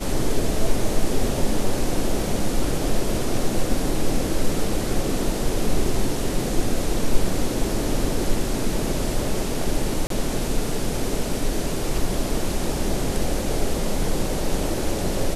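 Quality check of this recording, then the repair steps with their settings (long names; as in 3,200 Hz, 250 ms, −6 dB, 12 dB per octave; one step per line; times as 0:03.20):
0:10.07–0:10.10: drop-out 33 ms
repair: repair the gap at 0:10.07, 33 ms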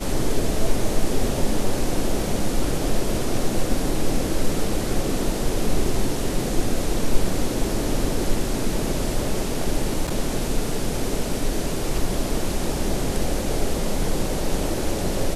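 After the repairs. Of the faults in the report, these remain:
none of them is left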